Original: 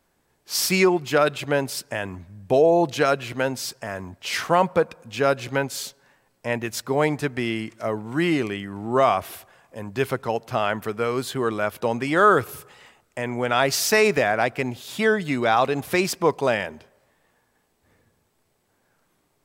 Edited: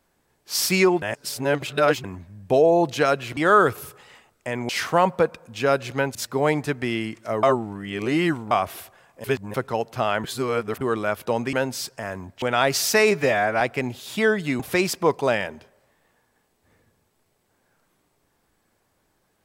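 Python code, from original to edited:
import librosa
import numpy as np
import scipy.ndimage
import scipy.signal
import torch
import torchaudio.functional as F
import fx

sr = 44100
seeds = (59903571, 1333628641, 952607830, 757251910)

y = fx.edit(x, sr, fx.reverse_span(start_s=1.02, length_s=1.02),
    fx.swap(start_s=3.37, length_s=0.89, other_s=12.08, other_length_s=1.32),
    fx.cut(start_s=5.72, length_s=0.98),
    fx.reverse_span(start_s=7.98, length_s=1.08),
    fx.reverse_span(start_s=9.79, length_s=0.3),
    fx.reverse_span(start_s=10.79, length_s=0.57),
    fx.stretch_span(start_s=14.09, length_s=0.33, factor=1.5),
    fx.cut(start_s=15.41, length_s=0.38), tone=tone)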